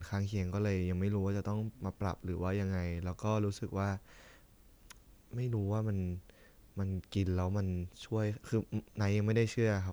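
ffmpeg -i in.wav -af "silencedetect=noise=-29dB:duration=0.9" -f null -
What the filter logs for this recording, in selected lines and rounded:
silence_start: 3.94
silence_end: 5.38 | silence_duration: 1.44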